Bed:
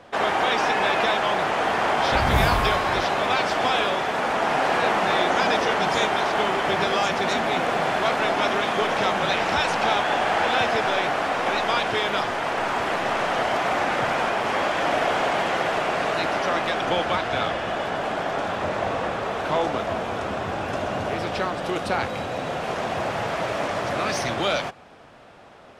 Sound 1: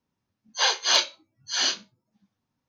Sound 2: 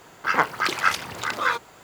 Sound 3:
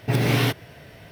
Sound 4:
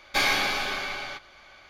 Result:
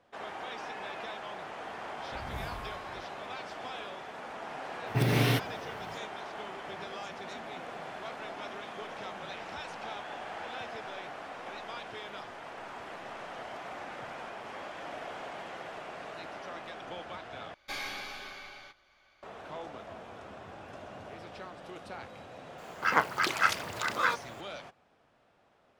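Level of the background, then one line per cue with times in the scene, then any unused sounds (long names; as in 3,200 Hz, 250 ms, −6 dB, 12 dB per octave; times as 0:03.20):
bed −19 dB
0:04.87: mix in 3 −5.5 dB
0:17.54: overwrite with 4 −14 dB + soft clipping −13 dBFS
0:22.58: mix in 2 −5 dB
not used: 1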